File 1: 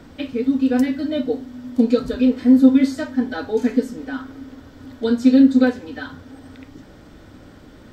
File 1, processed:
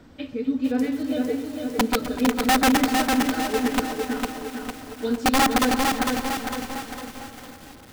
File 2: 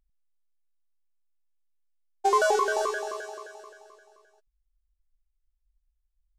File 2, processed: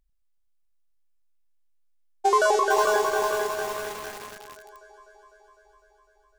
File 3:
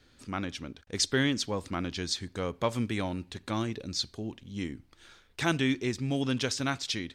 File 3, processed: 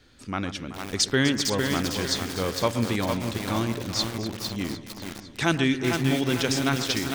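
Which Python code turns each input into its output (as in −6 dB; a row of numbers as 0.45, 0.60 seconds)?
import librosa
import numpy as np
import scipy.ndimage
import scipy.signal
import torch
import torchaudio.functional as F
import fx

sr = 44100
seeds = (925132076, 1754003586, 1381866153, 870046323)

y = (np.mod(10.0 ** (7.5 / 20.0) * x + 1.0, 2.0) - 1.0) / 10.0 ** (7.5 / 20.0)
y = fx.echo_alternate(y, sr, ms=126, hz=1900.0, feedback_pct=86, wet_db=-12.0)
y = fx.echo_crushed(y, sr, ms=454, feedback_pct=55, bits=6, wet_db=-3.5)
y = librosa.util.normalize(y) * 10.0 ** (-9 / 20.0)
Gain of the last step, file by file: −6.0, +2.0, +4.5 decibels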